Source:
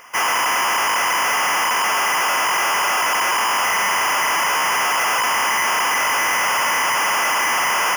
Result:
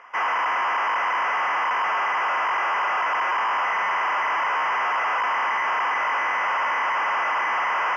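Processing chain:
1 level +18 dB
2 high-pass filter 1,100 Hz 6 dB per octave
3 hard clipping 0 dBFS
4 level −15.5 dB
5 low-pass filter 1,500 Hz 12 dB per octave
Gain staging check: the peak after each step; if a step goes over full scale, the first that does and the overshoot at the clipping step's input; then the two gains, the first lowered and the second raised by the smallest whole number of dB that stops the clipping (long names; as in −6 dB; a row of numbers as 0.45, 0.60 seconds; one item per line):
−0.5, +4.5, 0.0, −15.5, −19.5 dBFS
step 2, 4.5 dB
step 1 +13 dB, step 4 −10.5 dB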